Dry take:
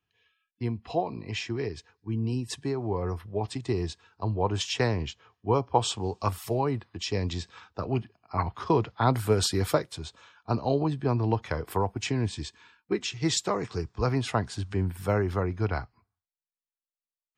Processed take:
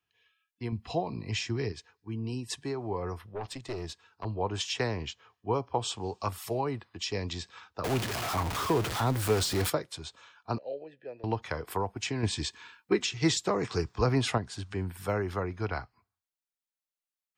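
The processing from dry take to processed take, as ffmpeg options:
-filter_complex "[0:a]asettb=1/sr,asplit=3[s0][s1][s2];[s0]atrim=end=0.724[s3];[s1]atrim=start=0.72:end=1.72,asetpts=PTS-STARTPTS,afade=t=in:d=0.004:c=qsin,afade=t=out:st=0.996:d=0.004:c=qsin,bass=f=250:g=9,treble=f=4000:g=6[s4];[s2]atrim=start=1.716[s5];[s3][s4]acrossfade=d=0.004:c1=hsin:c2=qsin[s6];[s6][s5]acrossfade=d=0.004:c1=qsin:c2=hsin,asettb=1/sr,asplit=3[s7][s8][s9];[s7]atrim=end=3.294[s10];[s8]atrim=start=3.29:end=4.25,asetpts=PTS-STARTPTS,afade=t=in:d=0.004:c=qsin,afade=t=out:st=0.956:d=0.004:c=qsin,aeval=exprs='(tanh(20*val(0)+0.4)-tanh(0.4))/20':c=same[s11];[s9]atrim=start=4.246[s12];[s10][s11]acrossfade=d=0.004:c1=hsin:c2=qsin[s13];[s13][s12]acrossfade=d=0.004:c1=qsin:c2=hsin,asettb=1/sr,asplit=3[s14][s15][s16];[s14]atrim=end=7.844[s17];[s15]atrim=start=7.84:end=9.7,asetpts=PTS-STARTPTS,afade=t=in:d=0.004:c=qsin,afade=t=out:st=1.856:d=0.004:c=qsin,aeval=exprs='val(0)+0.5*0.0631*sgn(val(0))':c=same[s18];[s16]atrim=start=9.696[s19];[s17][s18]acrossfade=d=0.004:c1=hsin:c2=qsin[s20];[s20][s19]acrossfade=d=0.004:c1=qsin:c2=hsin,asettb=1/sr,asplit=3[s21][s22][s23];[s21]atrim=end=10.584[s24];[s22]atrim=start=10.58:end=11.24,asetpts=PTS-STARTPTS,afade=t=in:d=0.004:c=qsin,afade=t=out:st=0.656:d=0.004:c=qsin,asplit=3[s25][s26][s27];[s25]bandpass=f=530:t=q:w=8,volume=1[s28];[s26]bandpass=f=1840:t=q:w=8,volume=0.501[s29];[s27]bandpass=f=2480:t=q:w=8,volume=0.355[s30];[s28][s29][s30]amix=inputs=3:normalize=0[s31];[s23]atrim=start=11.236[s32];[s24][s31]acrossfade=d=0.004:c1=hsin:c2=qsin[s33];[s33][s32]acrossfade=d=0.004:c1=qsin:c2=hsin,asettb=1/sr,asplit=3[s34][s35][s36];[s34]atrim=end=12.234[s37];[s35]atrim=start=12.23:end=14.38,asetpts=PTS-STARTPTS,afade=t=in:d=0.004:c=qsin,afade=t=out:st=2.146:d=0.004:c=qsin,acontrast=63[s38];[s36]atrim=start=14.376[s39];[s37][s38]acrossfade=d=0.004:c1=hsin:c2=qsin[s40];[s40][s39]acrossfade=d=0.004:c1=qsin:c2=hsin,lowshelf=f=420:g=-7,acrossover=split=480[s41][s42];[s42]acompressor=threshold=0.0355:ratio=6[s43];[s41][s43]amix=inputs=2:normalize=0"

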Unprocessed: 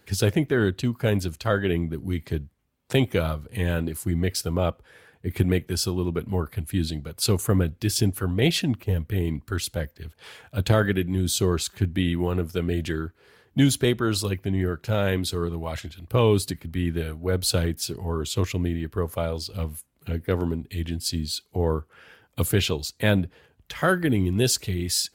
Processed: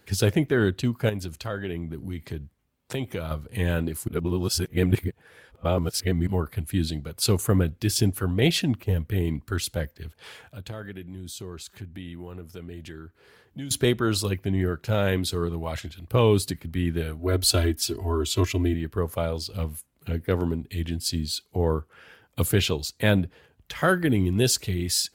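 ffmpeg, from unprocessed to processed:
-filter_complex "[0:a]asettb=1/sr,asplit=3[s0][s1][s2];[s0]atrim=end=1.094[s3];[s1]atrim=start=1.09:end=3.31,asetpts=PTS-STARTPTS,afade=t=in:d=0.004:c=qsin,afade=t=out:st=2.216:d=0.004:c=qsin,acompressor=threshold=0.0251:ratio=2:attack=3.2:release=140:knee=1:detection=peak[s4];[s2]atrim=start=3.306[s5];[s3][s4]acrossfade=d=0.004:c1=hsin:c2=qsin[s6];[s6][s5]acrossfade=d=0.004:c1=qsin:c2=hsin,asettb=1/sr,asplit=3[s7][s8][s9];[s7]atrim=end=10.414[s10];[s8]atrim=start=10.41:end=13.71,asetpts=PTS-STARTPTS,afade=t=in:d=0.004:c=qsin,afade=t=out:st=3.296:d=0.004:c=qsin,acompressor=threshold=0.00501:ratio=2:attack=3.2:release=140:knee=1:detection=peak[s11];[s9]atrim=start=13.706[s12];[s10][s11]acrossfade=d=0.004:c1=hsin:c2=qsin[s13];[s13][s12]acrossfade=d=0.004:c1=qsin:c2=hsin,asettb=1/sr,asplit=3[s14][s15][s16];[s14]atrim=end=17.194[s17];[s15]atrim=start=17.19:end=18.74,asetpts=PTS-STARTPTS,afade=t=in:d=0.004:c=qsin,afade=t=out:st=1.546:d=0.004:c=qsin,aecho=1:1:3:0.89,atrim=end_sample=68355[s18];[s16]atrim=start=18.736[s19];[s17][s18]acrossfade=d=0.004:c1=hsin:c2=qsin[s20];[s20][s19]acrossfade=d=0.004:c1=qsin:c2=hsin,asplit=3[s21][s22][s23];[s21]atrim=end=4.082[s24];[s22]atrim=start=4.078:end=6.272,asetpts=PTS-STARTPTS,areverse[s25];[s23]atrim=start=6.268[s26];[s24][s25]acrossfade=d=0.004:c1=hsin:c2=hsin[s27];[s27][s26]acrossfade=d=0.004:c1=hsin:c2=hsin"

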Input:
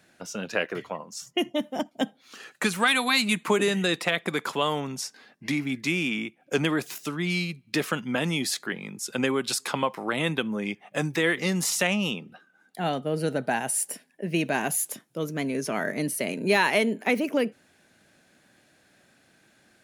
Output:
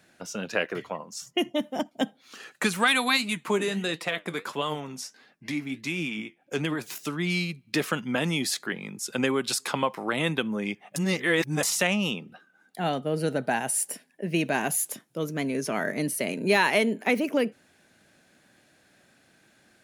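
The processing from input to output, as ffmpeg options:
-filter_complex "[0:a]asplit=3[s0][s1][s2];[s0]afade=t=out:st=3.16:d=0.02[s3];[s1]flanger=delay=5.5:depth=6.7:regen=65:speed=1.5:shape=triangular,afade=t=in:st=3.16:d=0.02,afade=t=out:st=6.86:d=0.02[s4];[s2]afade=t=in:st=6.86:d=0.02[s5];[s3][s4][s5]amix=inputs=3:normalize=0,asplit=3[s6][s7][s8];[s6]atrim=end=10.962[s9];[s7]atrim=start=10.958:end=11.632,asetpts=PTS-STARTPTS,areverse[s10];[s8]atrim=start=11.628[s11];[s9][s10]acrossfade=d=0.004:c1=hsin:c2=hsin[s12];[s12][s11]acrossfade=d=0.004:c1=hsin:c2=hsin"

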